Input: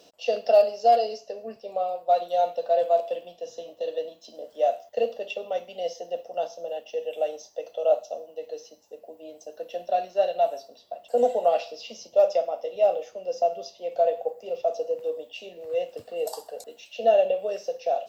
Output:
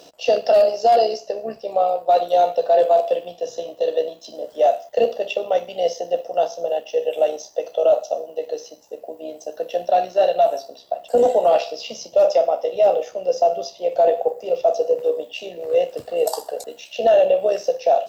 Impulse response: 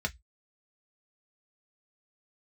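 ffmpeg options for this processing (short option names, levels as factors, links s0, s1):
-filter_complex "[0:a]asplit=2[s0][s1];[1:a]atrim=start_sample=2205,lowpass=8200[s2];[s1][s2]afir=irnorm=-1:irlink=0,volume=0.106[s3];[s0][s3]amix=inputs=2:normalize=0,tremolo=f=66:d=0.462,apsyclip=10,volume=0.355"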